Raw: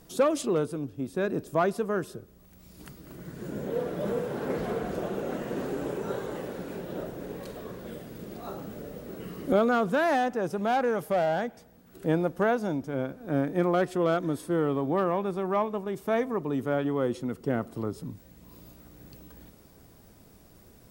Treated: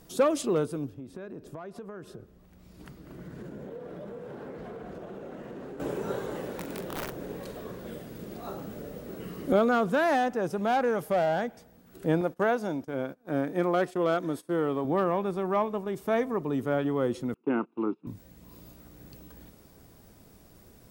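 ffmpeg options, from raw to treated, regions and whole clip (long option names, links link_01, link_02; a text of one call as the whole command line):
ffmpeg -i in.wav -filter_complex "[0:a]asettb=1/sr,asplit=3[link_01][link_02][link_03];[link_01]atrim=end=0.944[link_04];[link_02]atrim=start=0.94:end=5.8,asetpts=PTS-STARTPTS,afade=type=in:duration=0.004:curve=qsin,afade=type=out:start_time=4.856:duration=0.004:curve=qsin,acompressor=threshold=-37dB:ratio=10:attack=3.2:release=140:knee=1:detection=peak,highshelf=frequency=5100:gain=-11.5[link_05];[link_03]atrim=start=5.796[link_06];[link_04][link_05]acrossfade=duration=0.004:curve1=hsin:curve2=qsin[link_07];[link_07][link_06]acrossfade=duration=0.004:curve1=qsin:curve2=hsin,asettb=1/sr,asplit=3[link_08][link_09][link_10];[link_08]atrim=end=6.584[link_11];[link_09]atrim=start=6.58:end=7.13,asetpts=PTS-STARTPTS,afade=type=in:duration=0.004:curve=qsin,afade=type=out:start_time=0.546:duration=0.004:curve=qsin,aeval=exprs='(mod(26.6*val(0)+1,2)-1)/26.6':channel_layout=same,asplit=2[link_12][link_13];[link_13]adelay=43,volume=-9dB[link_14];[link_12][link_14]amix=inputs=2:normalize=0,atrim=end_sample=24255[link_15];[link_10]atrim=start=7.126[link_16];[link_11][link_15]acrossfade=duration=0.004:curve1=hsin:curve2=qsin[link_17];[link_17][link_16]acrossfade=duration=0.004:curve1=qsin:curve2=hsin,asettb=1/sr,asplit=3[link_18][link_19][link_20];[link_18]atrim=end=12.214[link_21];[link_19]atrim=start=12.21:end=14.85,asetpts=PTS-STARTPTS,afade=type=in:duration=0.004:curve=qsin,afade=type=out:start_time=2.636:duration=0.004:curve=qsin,agate=range=-19dB:threshold=-41dB:ratio=16:release=100:detection=peak,lowshelf=frequency=130:gain=-11.5[link_22];[link_20]atrim=start=14.846[link_23];[link_21][link_22]acrossfade=duration=0.004:curve1=hsin:curve2=qsin[link_24];[link_24][link_23]acrossfade=duration=0.004:curve1=qsin:curve2=hsin,asettb=1/sr,asplit=3[link_25][link_26][link_27];[link_25]atrim=end=17.344[link_28];[link_26]atrim=start=17.34:end=18.07,asetpts=PTS-STARTPTS,afade=type=in:duration=0.004:curve=qsin,afade=type=out:start_time=0.726:duration=0.004:curve=qsin,agate=range=-23dB:threshold=-37dB:ratio=16:release=100:detection=peak,highpass=frequency=210:width=0.5412,highpass=frequency=210:width=1.3066,equalizer=frequency=330:width_type=q:width=4:gain=8,equalizer=frequency=600:width_type=q:width=4:gain=-5,equalizer=frequency=900:width_type=q:width=4:gain=7,equalizer=frequency=1900:width_type=q:width=4:gain=-4,equalizer=frequency=2700:width_type=q:width=4:gain=9,lowpass=frequency=2800:width=0.5412,lowpass=frequency=2800:width=1.3066,aecho=1:1:0.8:0.42,atrim=end_sample=32193[link_29];[link_27]atrim=start=18.066[link_30];[link_28][link_29]acrossfade=duration=0.004:curve1=hsin:curve2=qsin[link_31];[link_31][link_30]acrossfade=duration=0.004:curve1=qsin:curve2=hsin" out.wav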